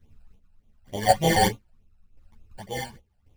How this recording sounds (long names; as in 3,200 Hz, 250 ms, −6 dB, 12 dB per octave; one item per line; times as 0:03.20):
aliases and images of a low sample rate 1,300 Hz, jitter 0%
phaser sweep stages 12, 3.4 Hz, lowest notch 340–1,700 Hz
chopped level 0.92 Hz, depth 60%, duty 35%
a shimmering, thickened sound